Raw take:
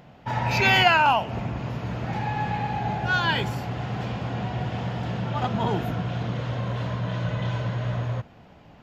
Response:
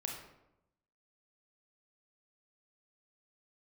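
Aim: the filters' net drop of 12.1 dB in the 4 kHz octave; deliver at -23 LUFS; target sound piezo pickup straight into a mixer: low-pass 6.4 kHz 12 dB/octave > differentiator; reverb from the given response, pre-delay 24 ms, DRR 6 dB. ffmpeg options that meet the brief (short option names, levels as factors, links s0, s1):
-filter_complex "[0:a]equalizer=f=4000:t=o:g=-7.5,asplit=2[s0][s1];[1:a]atrim=start_sample=2205,adelay=24[s2];[s1][s2]afir=irnorm=-1:irlink=0,volume=0.473[s3];[s0][s3]amix=inputs=2:normalize=0,lowpass=6400,aderivative,volume=5.96"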